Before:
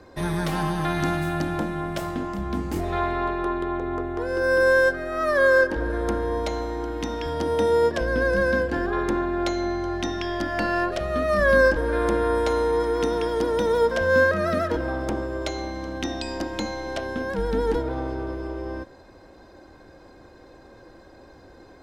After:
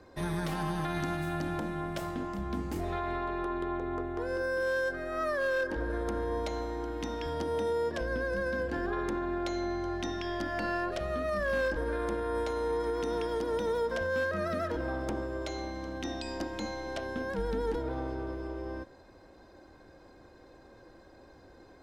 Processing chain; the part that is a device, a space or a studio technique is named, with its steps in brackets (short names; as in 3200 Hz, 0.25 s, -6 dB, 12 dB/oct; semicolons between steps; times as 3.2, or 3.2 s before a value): clipper into limiter (hard clip -12 dBFS, distortion -24 dB; limiter -17.5 dBFS, peak gain reduction 5.5 dB); gain -6.5 dB